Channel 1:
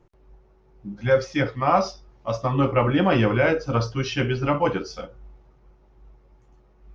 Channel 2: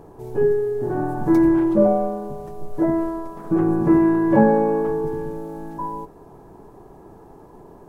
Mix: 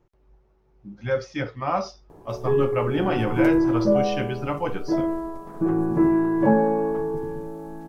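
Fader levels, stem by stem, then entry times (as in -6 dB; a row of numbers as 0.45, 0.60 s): -5.5, -3.5 dB; 0.00, 2.10 s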